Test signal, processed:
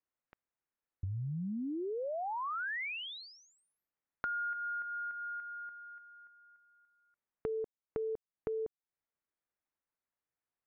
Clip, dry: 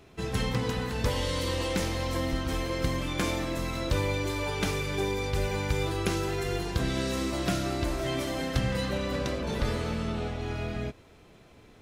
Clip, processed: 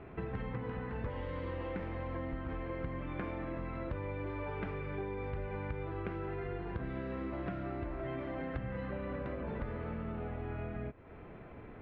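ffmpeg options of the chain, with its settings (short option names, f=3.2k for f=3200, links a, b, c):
-af "lowpass=f=2.1k:w=0.5412,lowpass=f=2.1k:w=1.3066,acompressor=threshold=-44dB:ratio=4,volume=5dB"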